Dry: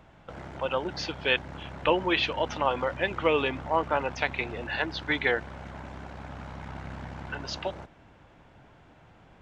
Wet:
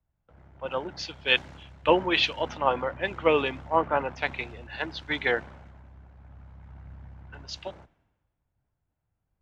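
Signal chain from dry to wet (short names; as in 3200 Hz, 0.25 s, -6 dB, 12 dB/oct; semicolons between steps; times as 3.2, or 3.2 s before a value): three-band expander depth 100%; gain -2 dB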